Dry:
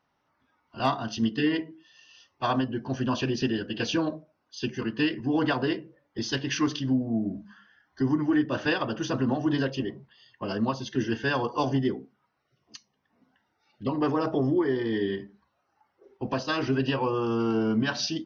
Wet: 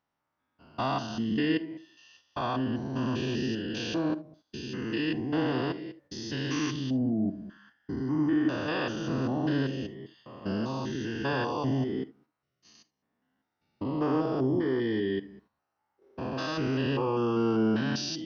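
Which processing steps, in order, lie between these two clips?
spectrogram pixelated in time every 200 ms; gate -59 dBFS, range -8 dB; reverberation, pre-delay 32 ms, DRR 15.5 dB

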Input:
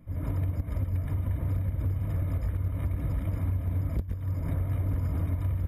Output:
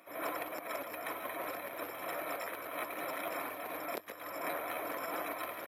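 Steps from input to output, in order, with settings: Bessel high-pass 680 Hz, order 4; pitch shift +1 st; trim +11.5 dB

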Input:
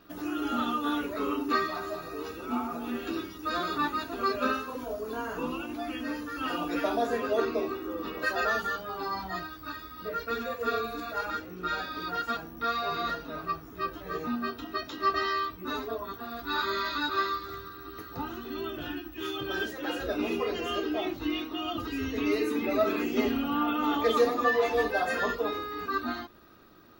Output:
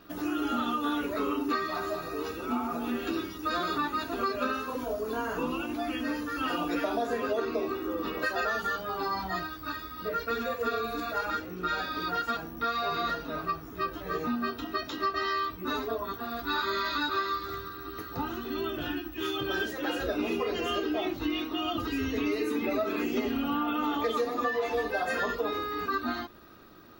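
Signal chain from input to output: compression, threshold -29 dBFS, peak gain reduction 10.5 dB; trim +3 dB

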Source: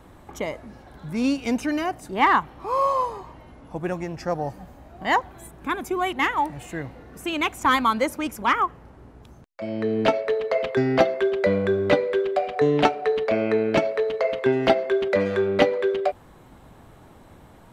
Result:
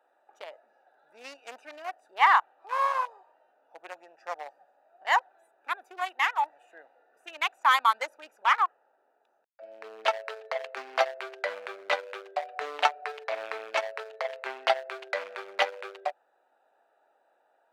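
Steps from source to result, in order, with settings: local Wiener filter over 41 samples; high-pass 760 Hz 24 dB/octave

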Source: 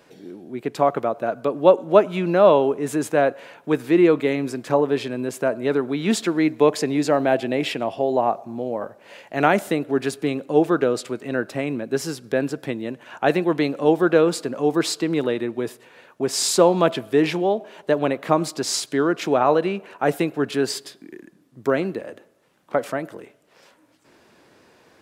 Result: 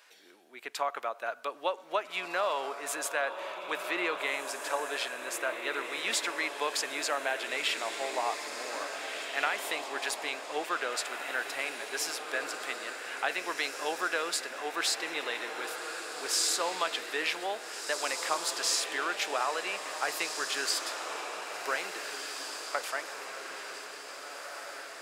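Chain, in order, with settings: high-pass 1.3 kHz 12 dB/octave; compression, threshold -26 dBFS, peak gain reduction 8 dB; echo that smears into a reverb 1765 ms, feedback 53%, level -6 dB

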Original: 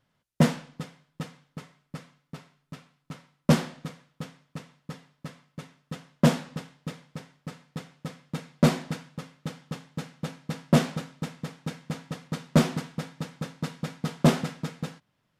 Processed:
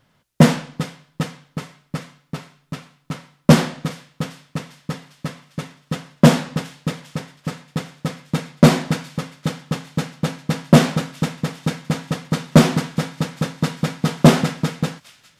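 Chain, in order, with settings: in parallel at -3 dB: peak limiter -21.5 dBFS, peak gain reduction 11 dB; on the sum: feedback echo behind a high-pass 401 ms, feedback 68%, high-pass 2.2 kHz, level -20 dB; trim +7.5 dB

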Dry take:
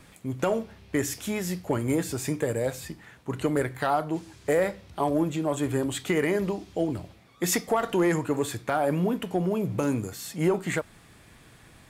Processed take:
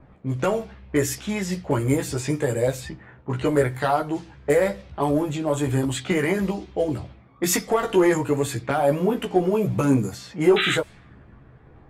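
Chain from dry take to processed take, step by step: painted sound noise, 10.56–10.76 s, 1.2–4 kHz -27 dBFS; chorus voices 4, 0.39 Hz, delay 15 ms, depth 1.3 ms; level-controlled noise filter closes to 890 Hz, open at -27 dBFS; trim +7 dB

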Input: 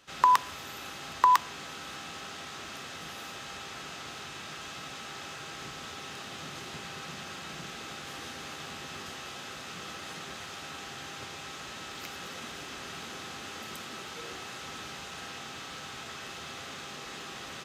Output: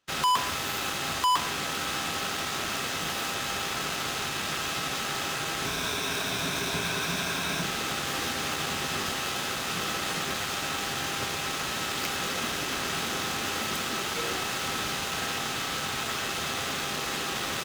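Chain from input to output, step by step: 5.66–7.63 s: rippled EQ curve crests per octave 1.6, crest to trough 9 dB; waveshaping leveller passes 3; saturation -17.5 dBFS, distortion -6 dB; waveshaping leveller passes 3; trim -4 dB

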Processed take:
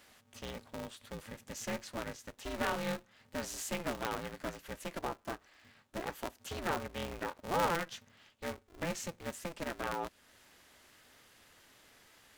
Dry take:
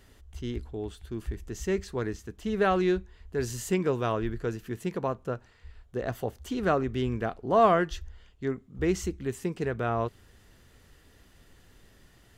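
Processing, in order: high-pass 660 Hz 6 dB/octave; compression 1.5:1, threshold -46 dBFS, peak gain reduction 10 dB; polarity switched at an audio rate 170 Hz; trim +1.5 dB

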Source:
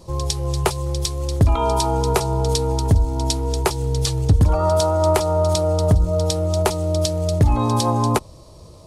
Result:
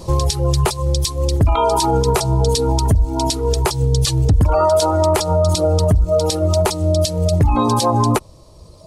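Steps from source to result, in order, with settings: reverb removal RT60 1.7 s; loudness maximiser +17 dB; trim -6.5 dB

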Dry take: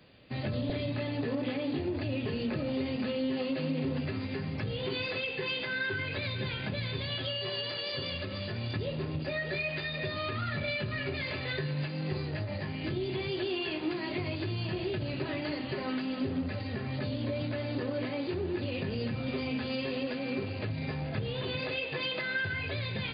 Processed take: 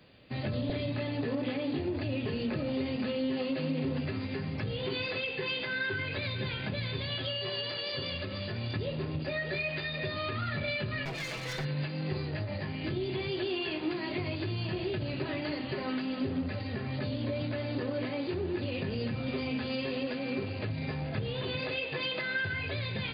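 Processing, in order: 11.05–11.65 s: comb filter that takes the minimum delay 6.1 ms

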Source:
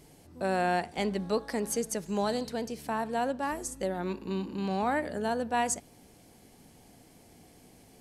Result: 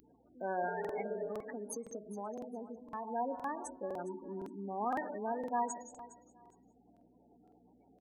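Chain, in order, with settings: graphic EQ 125/250/1000/4000/8000 Hz -9/+9/+4/-4/-8 dB; bit crusher 9-bit; hum 60 Hz, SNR 22 dB; gated-style reverb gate 200 ms flat, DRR 7.5 dB; spectral gate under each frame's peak -15 dB strong; 0.82–3.08 s: compression, threshold -27 dBFS, peak gain reduction 8 dB; 0.70–1.28 s: spectral replace 320–720 Hz after; RIAA curve recording; feedback delay 410 ms, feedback 19%, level -16 dB; crackling interface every 0.51 s, samples 2048, repeat, from 0.80 s; trim -7.5 dB

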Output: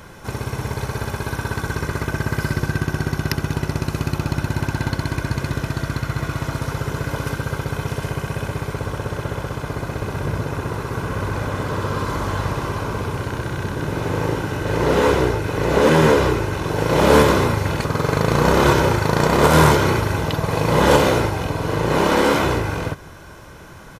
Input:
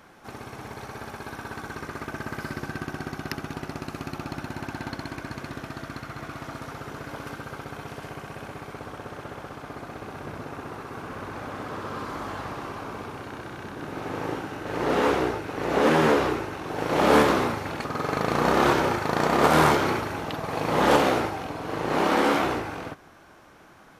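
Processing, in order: band-stop 4.7 kHz, Q 25; in parallel at +1.5 dB: compression, threshold -32 dBFS, peak gain reduction 17 dB; on the sum: tone controls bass +10 dB, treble +5 dB; comb 2 ms, depth 40%; trim +1.5 dB

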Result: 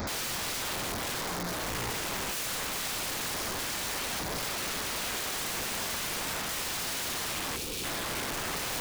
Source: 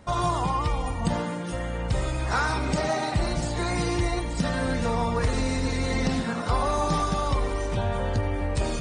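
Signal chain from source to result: one-bit delta coder 32 kbps, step -27.5 dBFS; LFO notch square 0.3 Hz 470–2900 Hz; integer overflow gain 29 dB; time-frequency box 7.56–7.84 s, 540–2200 Hz -11 dB

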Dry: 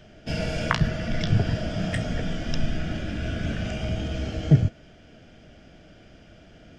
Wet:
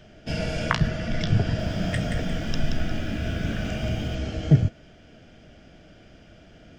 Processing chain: 1.41–4.15 s: bit-crushed delay 177 ms, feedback 35%, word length 9-bit, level -5.5 dB

